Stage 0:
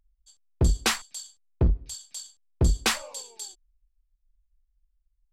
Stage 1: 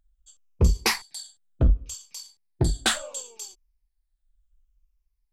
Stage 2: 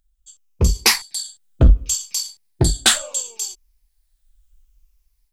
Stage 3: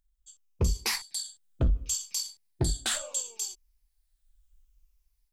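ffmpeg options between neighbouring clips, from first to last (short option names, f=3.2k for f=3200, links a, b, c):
-af "afftfilt=real='re*pow(10,10/40*sin(2*PI*(0.82*log(max(b,1)*sr/1024/100)/log(2)-(-0.7)*(pts-256)/sr)))':imag='im*pow(10,10/40*sin(2*PI*(0.82*log(max(b,1)*sr/1024/100)/log(2)-(-0.7)*(pts-256)/sr)))':win_size=1024:overlap=0.75"
-af "highshelf=f=2.5k:g=9,dynaudnorm=f=310:g=3:m=9.5dB"
-af "alimiter=limit=-11.5dB:level=0:latency=1:release=23,volume=-7.5dB"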